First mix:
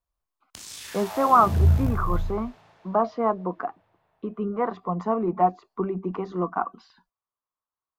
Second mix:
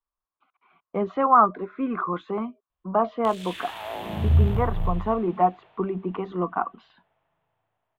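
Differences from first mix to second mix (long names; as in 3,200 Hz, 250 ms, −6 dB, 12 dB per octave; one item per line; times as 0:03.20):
background: entry +2.70 s
master: add high shelf with overshoot 4,100 Hz −8.5 dB, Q 3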